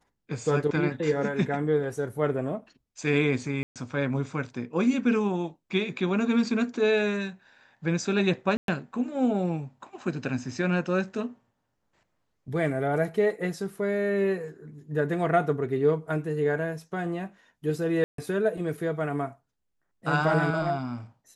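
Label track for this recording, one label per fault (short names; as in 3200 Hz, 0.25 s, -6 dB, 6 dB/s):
3.630000	3.760000	gap 0.127 s
8.570000	8.680000	gap 0.112 s
18.040000	18.180000	gap 0.143 s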